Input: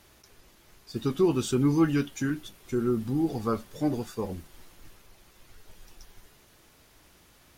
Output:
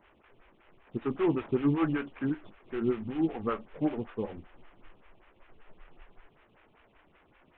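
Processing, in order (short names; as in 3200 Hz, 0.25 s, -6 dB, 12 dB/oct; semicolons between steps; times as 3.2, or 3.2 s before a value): CVSD 16 kbps; photocell phaser 5.2 Hz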